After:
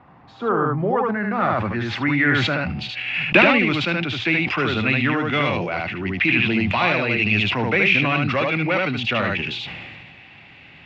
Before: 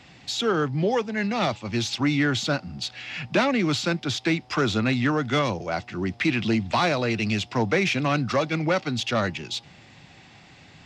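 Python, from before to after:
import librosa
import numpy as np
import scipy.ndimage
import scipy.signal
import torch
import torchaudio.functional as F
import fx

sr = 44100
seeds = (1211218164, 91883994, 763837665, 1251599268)

y = fx.filter_sweep_lowpass(x, sr, from_hz=1100.0, to_hz=2600.0, start_s=0.71, end_s=2.89, q=3.1)
y = fx.transient(y, sr, attack_db=7, sustain_db=-9, at=(2.84, 3.81))
y = y + 10.0 ** (-4.0 / 20.0) * np.pad(y, (int(75 * sr / 1000.0), 0))[:len(y)]
y = fx.sustainer(y, sr, db_per_s=27.0)
y = y * 10.0 ** (-1.0 / 20.0)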